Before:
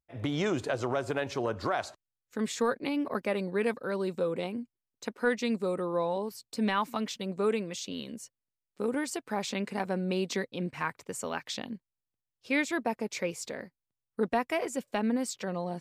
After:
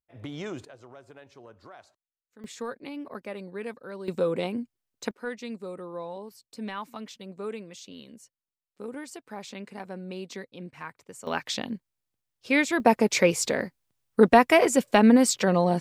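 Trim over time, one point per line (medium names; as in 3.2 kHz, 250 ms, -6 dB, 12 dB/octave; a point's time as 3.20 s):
-6.5 dB
from 0.65 s -18 dB
from 2.44 s -7 dB
from 4.08 s +4.5 dB
from 5.11 s -7 dB
from 11.27 s +5.5 dB
from 12.80 s +12 dB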